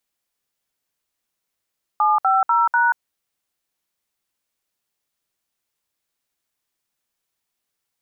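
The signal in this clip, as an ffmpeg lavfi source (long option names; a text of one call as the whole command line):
ffmpeg -f lavfi -i "aevalsrc='0.15*clip(min(mod(t,0.246),0.184-mod(t,0.246))/0.002,0,1)*(eq(floor(t/0.246),0)*(sin(2*PI*852*mod(t,0.246))+sin(2*PI*1209*mod(t,0.246)))+eq(floor(t/0.246),1)*(sin(2*PI*770*mod(t,0.246))+sin(2*PI*1336*mod(t,0.246)))+eq(floor(t/0.246),2)*(sin(2*PI*941*mod(t,0.246))+sin(2*PI*1336*mod(t,0.246)))+eq(floor(t/0.246),3)*(sin(2*PI*941*mod(t,0.246))+sin(2*PI*1477*mod(t,0.246))))':duration=0.984:sample_rate=44100" out.wav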